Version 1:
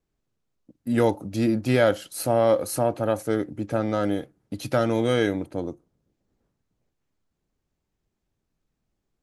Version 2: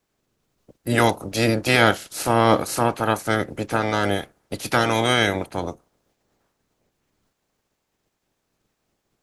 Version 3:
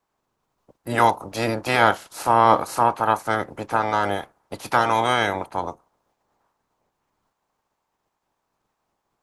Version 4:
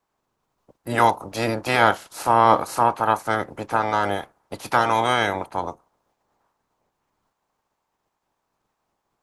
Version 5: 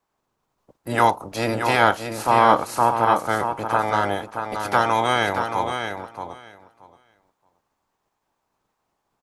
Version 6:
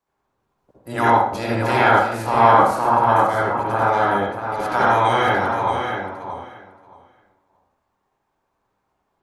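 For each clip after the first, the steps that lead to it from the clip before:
ceiling on every frequency bin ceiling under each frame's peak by 19 dB; level +3 dB
parametric band 960 Hz +13.5 dB 1.1 octaves; level −6.5 dB
no processing that can be heard
repeating echo 627 ms, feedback 15%, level −7 dB
convolution reverb RT60 0.60 s, pre-delay 53 ms, DRR −6.5 dB; level −5 dB

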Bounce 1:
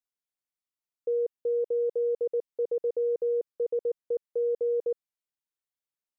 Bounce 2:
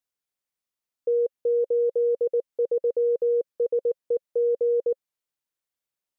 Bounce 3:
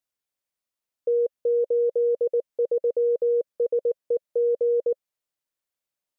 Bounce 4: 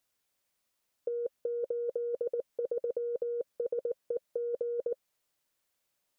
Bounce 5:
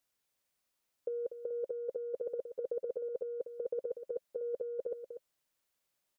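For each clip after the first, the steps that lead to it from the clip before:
parametric band 530 Hz +3 dB 0.24 octaves; level +3.5 dB
parametric band 600 Hz +4.5 dB 0.24 octaves
compressor whose output falls as the input rises −28 dBFS, ratio −0.5; level −1.5 dB
single-tap delay 243 ms −10 dB; level −3 dB

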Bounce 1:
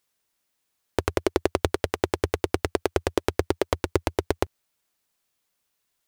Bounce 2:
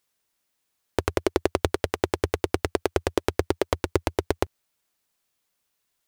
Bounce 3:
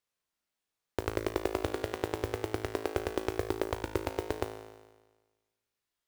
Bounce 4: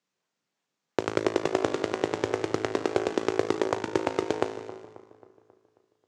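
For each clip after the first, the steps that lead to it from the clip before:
no processing that can be heard
high-shelf EQ 7,200 Hz −8.5 dB; tuned comb filter 54 Hz, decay 1.3 s, harmonics all, mix 80%; noise that follows the level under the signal 21 dB; level +2.5 dB
in parallel at −6.5 dB: sample-and-hold swept by an LFO 32×, swing 160% 2.9 Hz; on the sum: Chebyshev band-pass filter 140–7,000 Hz, order 3; delay with a low-pass on its return 269 ms, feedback 50%, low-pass 1,200 Hz, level −14.5 dB; level +5 dB

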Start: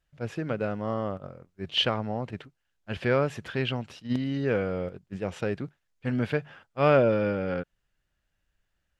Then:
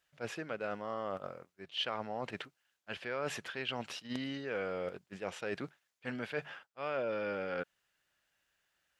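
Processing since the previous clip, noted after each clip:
high-pass filter 810 Hz 6 dB per octave
reversed playback
downward compressor 5 to 1, threshold −40 dBFS, peak gain reduction 17.5 dB
reversed playback
level +5 dB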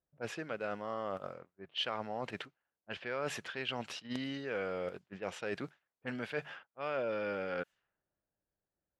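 low-pass that shuts in the quiet parts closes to 460 Hz, open at −37 dBFS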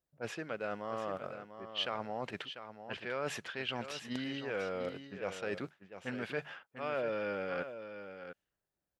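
single-tap delay 695 ms −10 dB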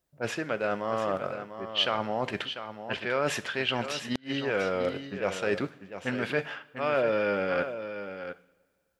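coupled-rooms reverb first 0.46 s, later 1.9 s, from −18 dB, DRR 12 dB
gate with flip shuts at −22 dBFS, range −31 dB
level +9 dB

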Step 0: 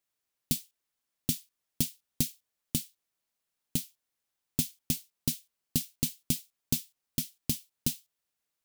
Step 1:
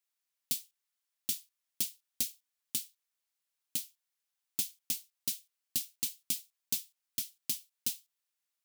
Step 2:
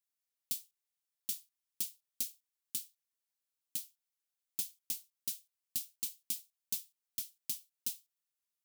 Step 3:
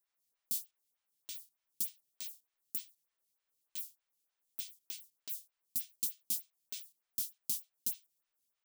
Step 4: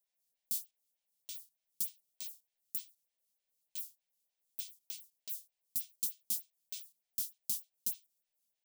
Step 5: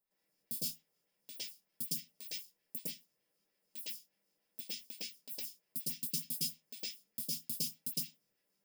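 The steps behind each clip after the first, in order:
high-pass filter 1,400 Hz 6 dB per octave; level −1.5 dB
high-shelf EQ 5,000 Hz +5.5 dB; level −8.5 dB
brickwall limiter −29.5 dBFS, peak gain reduction 10 dB; phaser with staggered stages 3.3 Hz; level +8.5 dB
phaser with its sweep stopped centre 330 Hz, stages 6
convolution reverb RT60 0.15 s, pre-delay 105 ms, DRR −10 dB; level +1 dB

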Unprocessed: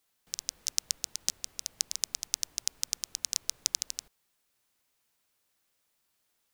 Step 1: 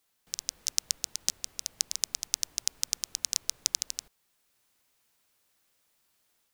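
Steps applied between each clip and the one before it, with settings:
automatic gain control gain up to 3 dB
level +1 dB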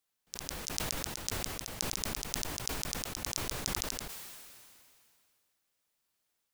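level that may fall only so fast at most 25 dB per second
level −8.5 dB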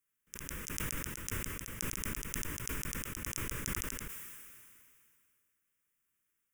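phaser with its sweep stopped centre 1,800 Hz, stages 4
level +1 dB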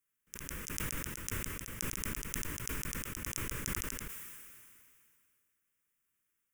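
floating-point word with a short mantissa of 2 bits

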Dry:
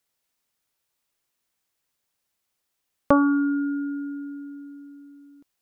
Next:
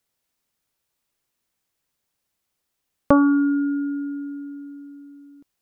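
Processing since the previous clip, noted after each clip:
low-shelf EQ 410 Hz +5 dB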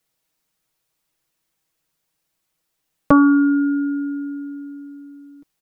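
comb filter 6.3 ms
level +1.5 dB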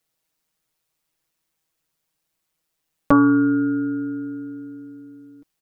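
amplitude modulation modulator 160 Hz, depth 30%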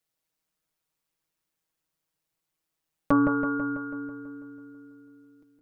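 delay with a low-pass on its return 164 ms, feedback 59%, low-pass 1,900 Hz, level −4.5 dB
level −7 dB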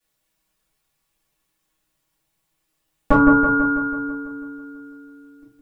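convolution reverb RT60 0.30 s, pre-delay 4 ms, DRR −9 dB
level −2 dB

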